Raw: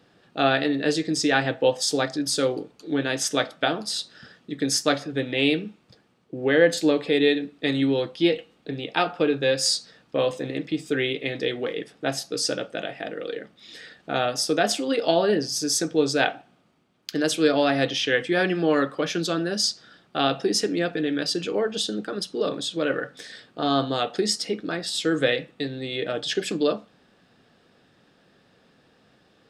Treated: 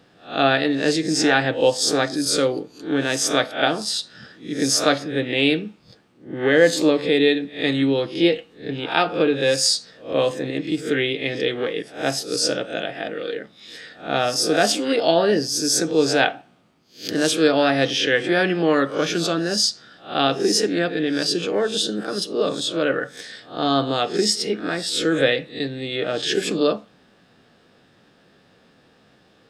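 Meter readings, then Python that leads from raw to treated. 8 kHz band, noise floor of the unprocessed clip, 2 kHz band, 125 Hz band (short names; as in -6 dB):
+4.5 dB, -61 dBFS, +4.0 dB, +3.0 dB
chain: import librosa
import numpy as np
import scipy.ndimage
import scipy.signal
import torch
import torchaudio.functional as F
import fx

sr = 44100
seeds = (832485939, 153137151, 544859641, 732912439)

y = fx.spec_swells(x, sr, rise_s=0.35)
y = fx.end_taper(y, sr, db_per_s=460.0)
y = y * 10.0 ** (2.5 / 20.0)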